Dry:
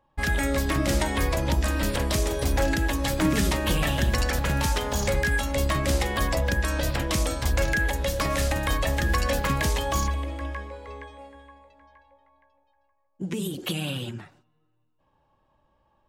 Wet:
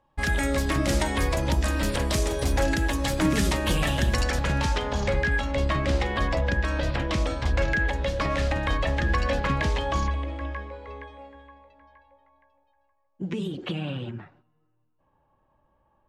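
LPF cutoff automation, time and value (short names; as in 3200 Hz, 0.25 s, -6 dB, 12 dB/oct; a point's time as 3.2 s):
4.11 s 11000 Hz
4.51 s 6400 Hz
4.96 s 3800 Hz
13.38 s 3800 Hz
13.83 s 2100 Hz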